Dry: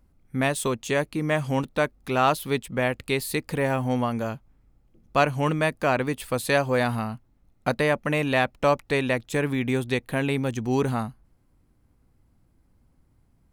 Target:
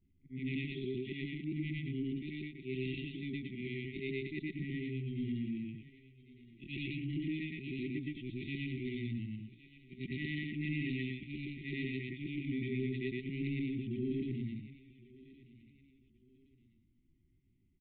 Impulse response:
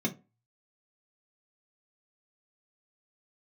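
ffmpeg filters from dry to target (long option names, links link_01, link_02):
-filter_complex "[0:a]afftfilt=real='re':imag='-im':win_size=8192:overlap=0.75,aresample=8000,asoftclip=type=tanh:threshold=-25dB,aresample=44100,lowshelf=frequency=94:gain=-5,asplit=2[link_01][link_02];[link_02]aecho=0:1:848|1696:0.0891|0.0294[link_03];[link_01][link_03]amix=inputs=2:normalize=0,atempo=0.76,afftfilt=real='re*(1-between(b*sr/4096,400,1900))':imag='im*(1-between(b*sr/4096,400,1900))':win_size=4096:overlap=0.75,adynamicequalizer=threshold=0.00251:dfrequency=1800:dqfactor=0.7:tfrequency=1800:tqfactor=0.7:attack=5:release=100:ratio=0.375:range=2.5:mode=cutabove:tftype=highshelf,volume=-2.5dB"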